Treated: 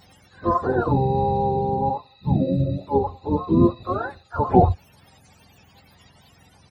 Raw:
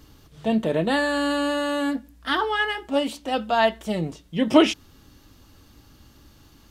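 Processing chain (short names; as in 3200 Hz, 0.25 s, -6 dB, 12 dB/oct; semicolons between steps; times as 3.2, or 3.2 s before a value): spectrum mirrored in octaves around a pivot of 480 Hz; harmoniser -12 st -15 dB, -7 st -8 dB, +3 st -16 dB; gain +2.5 dB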